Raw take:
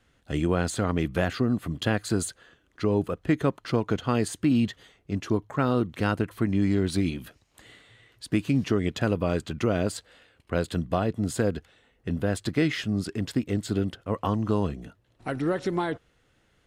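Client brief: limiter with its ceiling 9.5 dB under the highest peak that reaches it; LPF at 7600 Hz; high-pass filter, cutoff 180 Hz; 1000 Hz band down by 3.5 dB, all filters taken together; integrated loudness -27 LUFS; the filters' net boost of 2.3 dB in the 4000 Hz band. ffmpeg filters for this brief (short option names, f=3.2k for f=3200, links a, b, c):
-af "highpass=180,lowpass=7.6k,equalizer=f=1k:t=o:g=-5,equalizer=f=4k:t=o:g=3.5,volume=6dB,alimiter=limit=-15dB:level=0:latency=1"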